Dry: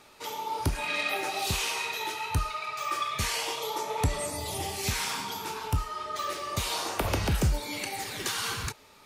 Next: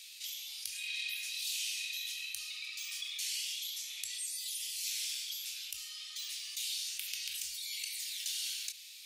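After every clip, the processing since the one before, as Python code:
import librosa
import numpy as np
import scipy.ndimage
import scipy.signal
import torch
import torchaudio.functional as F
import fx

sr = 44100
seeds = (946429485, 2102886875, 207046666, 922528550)

y = scipy.signal.sosfilt(scipy.signal.cheby2(4, 50, 1100.0, 'highpass', fs=sr, output='sos'), x)
y = fx.env_flatten(y, sr, amount_pct=50)
y = y * 10.0 ** (-5.0 / 20.0)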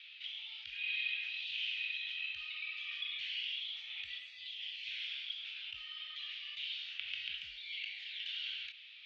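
y = scipy.signal.sosfilt(scipy.signal.ellip(4, 1.0, 80, 3200.0, 'lowpass', fs=sr, output='sos'), x)
y = y * 10.0 ** (4.5 / 20.0)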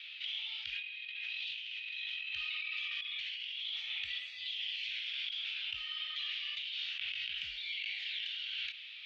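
y = fx.over_compress(x, sr, threshold_db=-44.0, ratio=-1.0)
y = y * 10.0 ** (4.0 / 20.0)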